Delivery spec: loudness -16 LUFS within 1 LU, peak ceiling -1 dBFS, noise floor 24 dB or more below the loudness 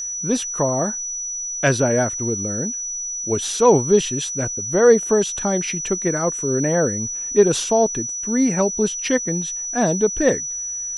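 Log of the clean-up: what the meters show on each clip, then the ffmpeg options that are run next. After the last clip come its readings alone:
steady tone 5.9 kHz; tone level -25 dBFS; loudness -19.5 LUFS; peak level -2.5 dBFS; loudness target -16.0 LUFS
-> -af "bandreject=f=5900:w=30"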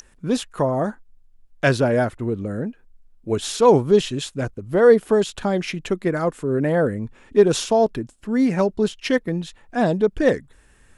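steady tone not found; loudness -21.0 LUFS; peak level -3.0 dBFS; loudness target -16.0 LUFS
-> -af "volume=1.78,alimiter=limit=0.891:level=0:latency=1"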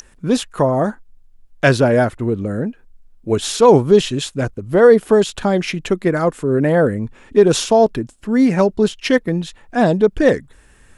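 loudness -16.0 LUFS; peak level -1.0 dBFS; noise floor -49 dBFS

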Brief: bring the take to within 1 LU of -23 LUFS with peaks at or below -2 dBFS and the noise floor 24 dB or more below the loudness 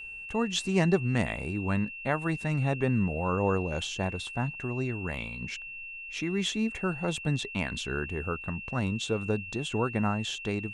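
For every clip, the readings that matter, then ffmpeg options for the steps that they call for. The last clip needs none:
steady tone 2.7 kHz; tone level -39 dBFS; loudness -30.5 LUFS; peak level -11.5 dBFS; loudness target -23.0 LUFS
-> -af "bandreject=f=2700:w=30"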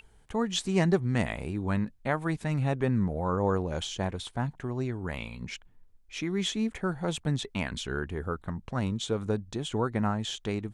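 steady tone not found; loudness -31.0 LUFS; peak level -11.5 dBFS; loudness target -23.0 LUFS
-> -af "volume=2.51"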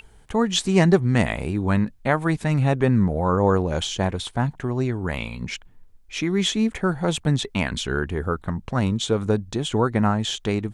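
loudness -23.0 LUFS; peak level -3.5 dBFS; noise floor -50 dBFS

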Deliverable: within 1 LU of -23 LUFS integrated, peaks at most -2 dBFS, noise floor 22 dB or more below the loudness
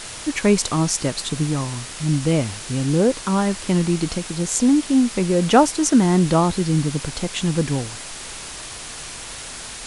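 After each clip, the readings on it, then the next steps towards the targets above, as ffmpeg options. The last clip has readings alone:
noise floor -35 dBFS; noise floor target -42 dBFS; loudness -20.0 LUFS; peak level -1.5 dBFS; loudness target -23.0 LUFS
-> -af "afftdn=nr=7:nf=-35"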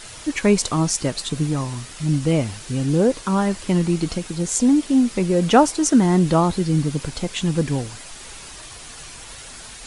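noise floor -39 dBFS; noise floor target -42 dBFS
-> -af "afftdn=nr=6:nf=-39"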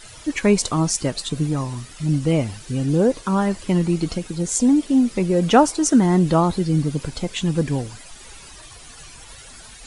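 noise floor -42 dBFS; loudness -20.0 LUFS; peak level -1.5 dBFS; loudness target -23.0 LUFS
-> -af "volume=0.708"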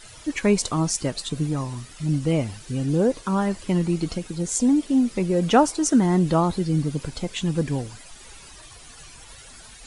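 loudness -23.0 LUFS; peak level -4.5 dBFS; noise floor -45 dBFS

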